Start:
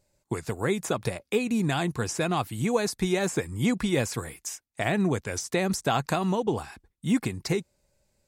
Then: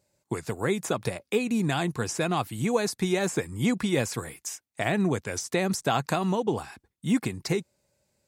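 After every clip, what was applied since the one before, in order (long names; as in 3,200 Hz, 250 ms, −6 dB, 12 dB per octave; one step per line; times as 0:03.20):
high-pass filter 89 Hz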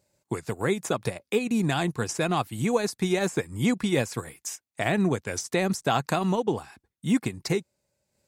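transient designer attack −1 dB, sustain −6 dB
level +1.5 dB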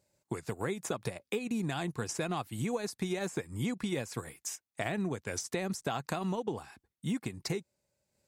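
downward compressor, threshold −26 dBFS, peak gain reduction 8.5 dB
level −4 dB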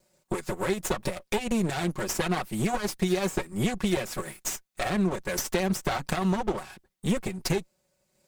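lower of the sound and its delayed copy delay 5.4 ms
level +9 dB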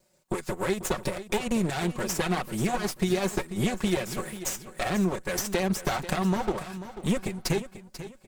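repeating echo 490 ms, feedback 32%, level −13 dB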